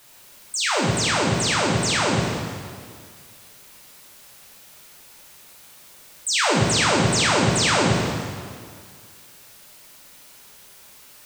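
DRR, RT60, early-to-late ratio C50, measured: -4.5 dB, 2.0 s, -1.0 dB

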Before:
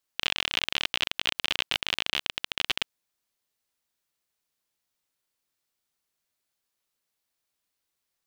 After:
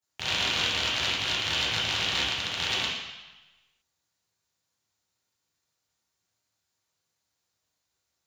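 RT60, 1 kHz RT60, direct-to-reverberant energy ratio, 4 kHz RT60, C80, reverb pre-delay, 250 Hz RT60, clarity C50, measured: 1.1 s, 1.2 s, -10.0 dB, 1.1 s, 2.5 dB, 3 ms, 1.0 s, -1.0 dB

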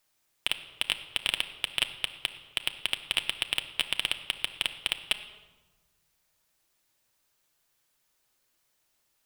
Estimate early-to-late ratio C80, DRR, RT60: 13.0 dB, 7.0 dB, 1.3 s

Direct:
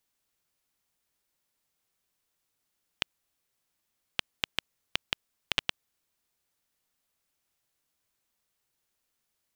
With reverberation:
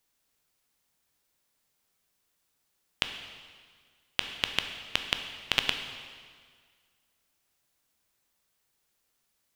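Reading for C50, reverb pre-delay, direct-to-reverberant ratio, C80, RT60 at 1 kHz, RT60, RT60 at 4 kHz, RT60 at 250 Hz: 7.0 dB, 6 ms, 5.5 dB, 8.5 dB, 1.8 s, 1.8 s, 1.7 s, 1.8 s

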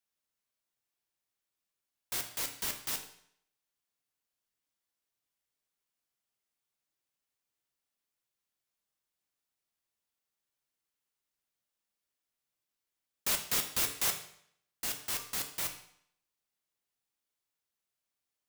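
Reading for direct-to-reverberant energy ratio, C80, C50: 4.5 dB, 12.5 dB, 9.0 dB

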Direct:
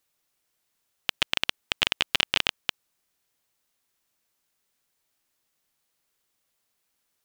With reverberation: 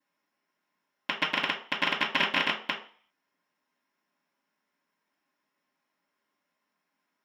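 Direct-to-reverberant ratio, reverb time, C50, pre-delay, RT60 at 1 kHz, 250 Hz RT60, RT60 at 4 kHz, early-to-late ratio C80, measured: -14.0 dB, 0.45 s, 9.0 dB, 3 ms, 0.50 s, 0.45 s, 0.45 s, 13.0 dB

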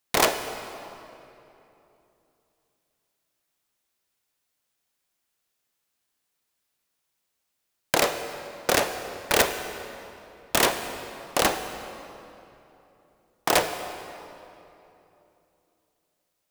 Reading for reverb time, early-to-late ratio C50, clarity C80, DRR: 3.0 s, 8.5 dB, 9.5 dB, 8.0 dB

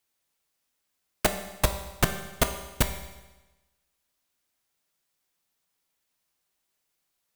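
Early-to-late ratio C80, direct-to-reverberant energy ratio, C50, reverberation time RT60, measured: 11.0 dB, 6.0 dB, 9.0 dB, 1.1 s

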